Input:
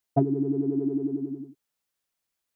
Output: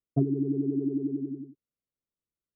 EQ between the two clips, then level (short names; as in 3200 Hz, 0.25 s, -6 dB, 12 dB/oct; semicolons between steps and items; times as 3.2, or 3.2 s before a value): running mean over 53 samples; 0.0 dB